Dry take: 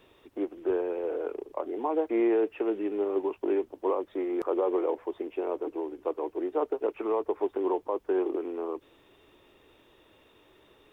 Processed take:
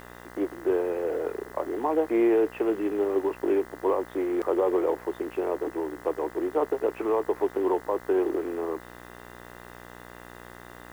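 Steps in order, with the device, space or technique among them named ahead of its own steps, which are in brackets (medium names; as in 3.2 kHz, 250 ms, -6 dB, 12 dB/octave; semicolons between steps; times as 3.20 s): video cassette with head-switching buzz (mains buzz 60 Hz, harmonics 34, -49 dBFS -1 dB/octave; white noise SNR 31 dB); trim +3 dB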